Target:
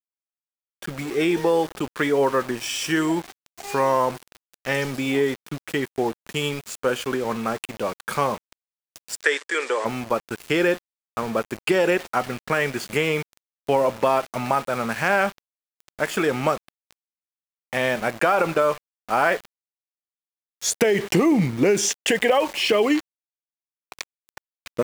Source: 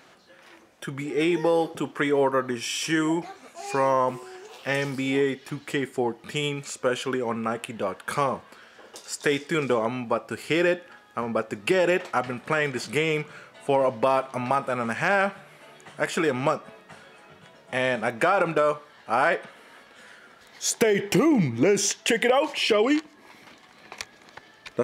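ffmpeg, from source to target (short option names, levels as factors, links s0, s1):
-filter_complex "[0:a]aeval=exprs='val(0)*gte(abs(val(0)),0.02)':c=same,asplit=3[s0][s1][s2];[s0]afade=t=out:st=9.22:d=0.02[s3];[s1]highpass=f=420:w=0.5412,highpass=f=420:w=1.3066,equalizer=f=690:t=q:w=4:g=-8,equalizer=f=1800:t=q:w=4:g=8,equalizer=f=7900:t=q:w=4:g=6,lowpass=f=8900:w=0.5412,lowpass=f=8900:w=1.3066,afade=t=in:st=9.22:d=0.02,afade=t=out:st=9.84:d=0.02[s4];[s2]afade=t=in:st=9.84:d=0.02[s5];[s3][s4][s5]amix=inputs=3:normalize=0,volume=1.26"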